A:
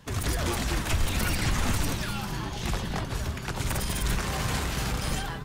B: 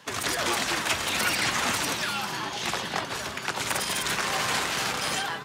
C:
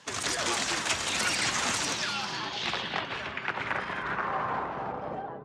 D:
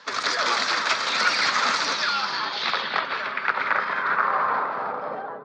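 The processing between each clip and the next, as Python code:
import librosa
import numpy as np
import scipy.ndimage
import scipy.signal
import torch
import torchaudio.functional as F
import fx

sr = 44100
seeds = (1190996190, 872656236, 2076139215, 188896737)

y1 = fx.weighting(x, sr, curve='A')
y1 = y1 * librosa.db_to_amplitude(5.5)
y2 = fx.filter_sweep_lowpass(y1, sr, from_hz=7500.0, to_hz=570.0, start_s=1.75, end_s=5.4, q=1.6)
y2 = y2 * librosa.db_to_amplitude(-3.5)
y3 = fx.cabinet(y2, sr, low_hz=330.0, low_slope=12, high_hz=4900.0, hz=(340.0, 750.0, 1300.0, 2900.0, 4500.0), db=(-9, -5, 6, -9, 4))
y3 = y3 * librosa.db_to_amplitude(7.5)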